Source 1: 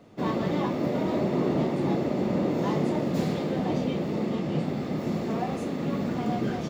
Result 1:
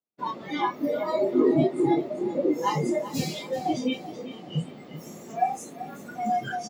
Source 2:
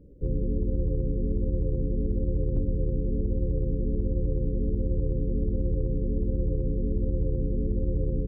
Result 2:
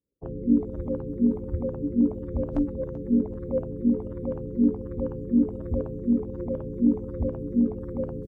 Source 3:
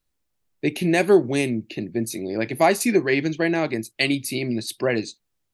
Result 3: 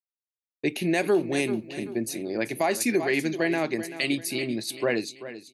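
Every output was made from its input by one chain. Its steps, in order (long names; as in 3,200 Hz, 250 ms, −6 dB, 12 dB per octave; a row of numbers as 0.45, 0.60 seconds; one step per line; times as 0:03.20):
downward expander −32 dBFS
high-pass filter 230 Hz 6 dB per octave
noise reduction from a noise print of the clip's start 22 dB
repeating echo 386 ms, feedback 36%, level −14 dB
boost into a limiter +11 dB
loudness normalisation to −27 LKFS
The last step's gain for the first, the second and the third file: −0.5, +10.5, −13.0 decibels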